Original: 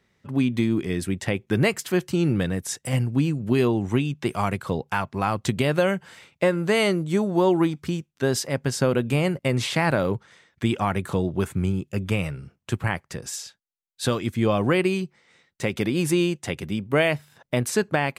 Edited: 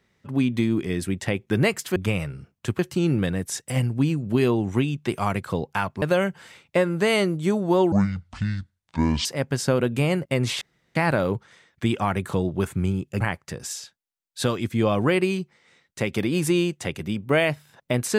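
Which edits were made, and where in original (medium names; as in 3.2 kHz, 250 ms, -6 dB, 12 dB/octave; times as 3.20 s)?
5.19–5.69 s: delete
7.59–8.39 s: speed 60%
9.75 s: insert room tone 0.34 s
12.00–12.83 s: move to 1.96 s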